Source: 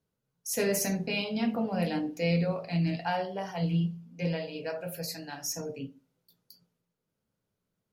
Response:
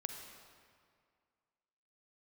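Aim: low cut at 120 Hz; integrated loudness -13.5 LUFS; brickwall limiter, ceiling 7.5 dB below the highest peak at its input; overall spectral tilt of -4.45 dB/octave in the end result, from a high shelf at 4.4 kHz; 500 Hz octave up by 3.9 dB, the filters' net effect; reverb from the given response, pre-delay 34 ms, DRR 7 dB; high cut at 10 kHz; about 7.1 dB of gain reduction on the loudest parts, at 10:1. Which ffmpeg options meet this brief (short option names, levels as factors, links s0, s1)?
-filter_complex "[0:a]highpass=120,lowpass=10000,equalizer=f=500:t=o:g=4.5,highshelf=f=4400:g=7,acompressor=threshold=0.0398:ratio=10,alimiter=level_in=1.33:limit=0.0631:level=0:latency=1,volume=0.75,asplit=2[s0][s1];[1:a]atrim=start_sample=2205,adelay=34[s2];[s1][s2]afir=irnorm=-1:irlink=0,volume=0.501[s3];[s0][s3]amix=inputs=2:normalize=0,volume=12.6"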